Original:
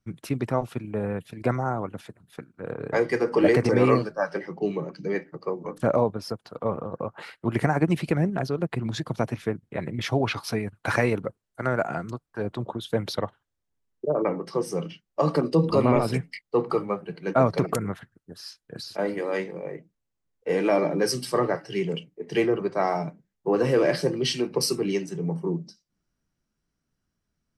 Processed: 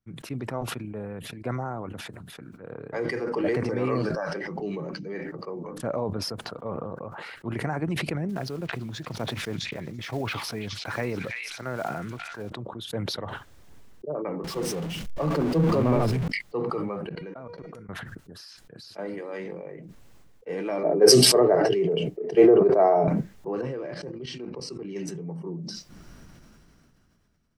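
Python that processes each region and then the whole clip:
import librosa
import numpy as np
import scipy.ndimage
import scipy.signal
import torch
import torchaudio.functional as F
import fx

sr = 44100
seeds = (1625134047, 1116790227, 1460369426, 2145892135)

y = fx.chain(x, sr, fx.peak_eq(hz=6900.0, db=3.5, octaves=1.9),
    fx.quant_float(bits=8),
    fx.pre_swell(db_per_s=48.0), at=(4.0, 4.96))
y = fx.chain(y, sr, fx.block_float(bits=5),
    fx.echo_stepped(ms=331, hz=2900.0, octaves=0.7, feedback_pct=70, wet_db=-7.5), at=(8.29, 12.5))
y = fx.chain(y, sr, fx.zero_step(step_db=-23.0),
    fx.tilt_eq(slope=-1.5),
    fx.band_widen(depth_pct=70), at=(14.44, 16.28))
y = fx.chain(y, sr, fx.level_steps(step_db=23),
    fx.high_shelf(hz=5300.0, db=-10.0),
    fx.comb_fb(f0_hz=480.0, decay_s=0.26, harmonics='all', damping=0.0, mix_pct=70), at=(17.09, 17.89))
y = fx.chain(y, sr, fx.small_body(hz=(430.0, 640.0), ring_ms=25, db=16),
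    fx.band_widen(depth_pct=100), at=(20.83, 23.08))
y = fx.chain(y, sr, fx.lowpass(hz=8100.0, slope=24),
    fx.high_shelf(hz=2600.0, db=-7.5),
    fx.level_steps(step_db=14), at=(23.61, 24.96))
y = fx.high_shelf(y, sr, hz=4700.0, db=-6.0)
y = fx.sustainer(y, sr, db_per_s=20.0)
y = F.gain(torch.from_numpy(y), -8.0).numpy()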